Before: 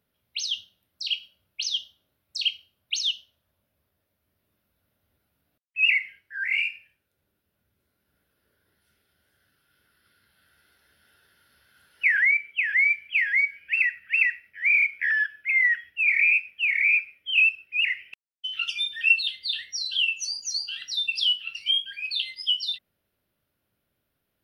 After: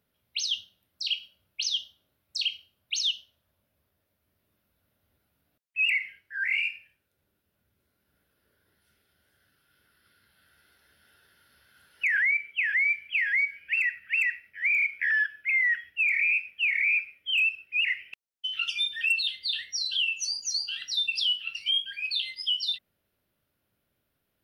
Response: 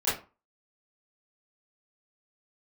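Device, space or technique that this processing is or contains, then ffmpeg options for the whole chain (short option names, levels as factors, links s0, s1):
clipper into limiter: -af "asoftclip=type=hard:threshold=0.224,alimiter=limit=0.112:level=0:latency=1:release=44"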